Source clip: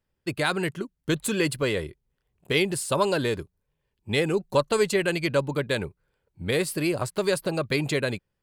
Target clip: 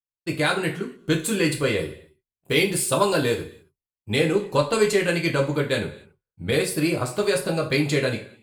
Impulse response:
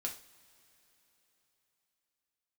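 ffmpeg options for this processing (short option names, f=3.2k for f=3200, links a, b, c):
-filter_complex "[0:a]agate=range=-33dB:threshold=-53dB:ratio=3:detection=peak,asettb=1/sr,asplit=3[a][b][c];[a]atrim=end=1.784[d];[b]atrim=start=1.78:end=4.16,asetpts=PTS-STARTPTS,afade=t=in:d=0.004:c=qsin,afade=t=out:st=2.376:d=0.004:c=qsin,highshelf=f=11k:g=10[e];[c]atrim=start=4.156[f];[d][e]acrossfade=d=0.004:c1=hsin:c2=qsin[g];[g][f]acrossfade=d=0.004:c1=qsin:c2=hsin[h];[1:a]atrim=start_sample=2205,afade=t=out:st=0.34:d=0.01,atrim=end_sample=15435[i];[h][i]afir=irnorm=-1:irlink=0,volume=3dB"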